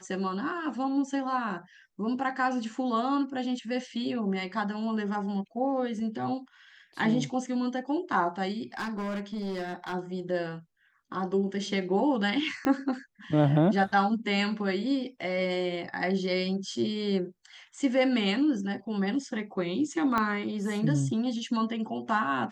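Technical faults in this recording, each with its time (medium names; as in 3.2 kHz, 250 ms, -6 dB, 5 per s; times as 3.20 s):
8.77–9.94 s: clipped -29.5 dBFS
12.65 s: pop -15 dBFS
20.18 s: pop -14 dBFS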